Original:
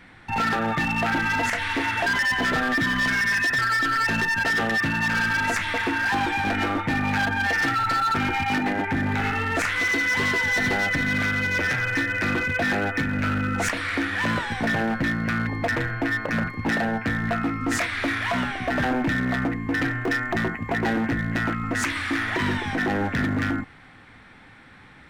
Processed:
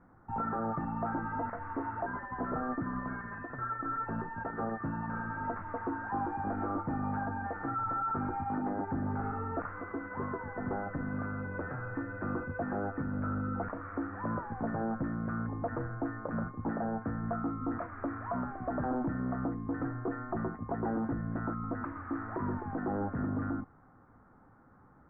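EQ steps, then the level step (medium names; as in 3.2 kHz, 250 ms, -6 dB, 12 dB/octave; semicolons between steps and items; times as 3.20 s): elliptic low-pass 1.3 kHz, stop band 80 dB; -8.0 dB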